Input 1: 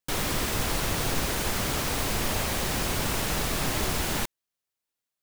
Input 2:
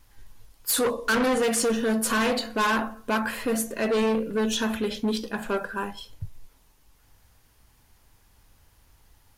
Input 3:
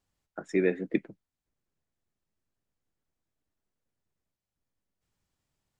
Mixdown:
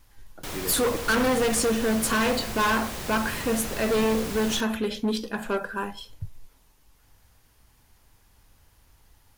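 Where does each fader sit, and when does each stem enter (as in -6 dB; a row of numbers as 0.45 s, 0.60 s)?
-6.5 dB, 0.0 dB, -10.0 dB; 0.35 s, 0.00 s, 0.00 s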